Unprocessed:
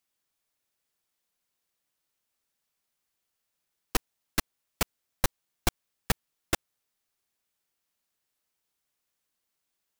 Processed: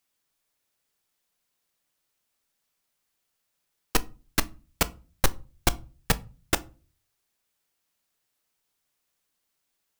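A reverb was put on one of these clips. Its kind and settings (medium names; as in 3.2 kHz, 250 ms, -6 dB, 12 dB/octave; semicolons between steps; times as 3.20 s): simulated room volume 180 m³, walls furnished, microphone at 0.31 m; trim +3.5 dB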